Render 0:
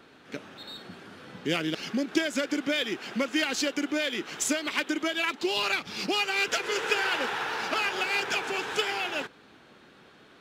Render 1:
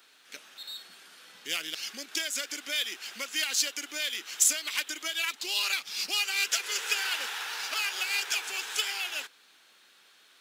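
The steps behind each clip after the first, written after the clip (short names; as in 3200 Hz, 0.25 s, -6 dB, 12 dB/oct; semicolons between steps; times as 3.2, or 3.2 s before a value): differentiator; gain +7.5 dB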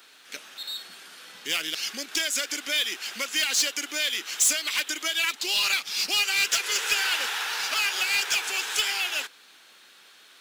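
soft clip -22 dBFS, distortion -13 dB; gain +6.5 dB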